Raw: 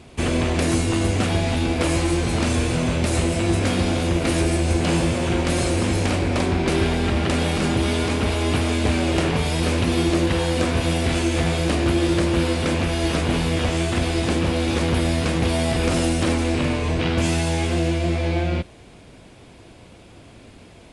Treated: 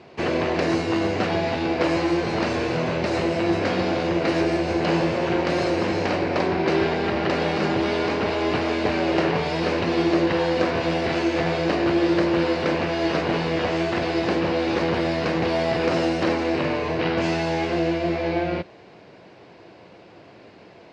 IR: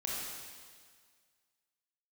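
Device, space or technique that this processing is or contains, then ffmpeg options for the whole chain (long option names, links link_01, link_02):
kitchen radio: -af "highpass=210,equalizer=frequency=250:width_type=q:width=4:gain=-9,equalizer=frequency=1300:width_type=q:width=4:gain=-3,equalizer=frequency=2400:width_type=q:width=4:gain=-4,equalizer=frequency=3400:width_type=q:width=4:gain=-10,lowpass=frequency=4500:width=0.5412,lowpass=frequency=4500:width=1.3066,volume=3dB"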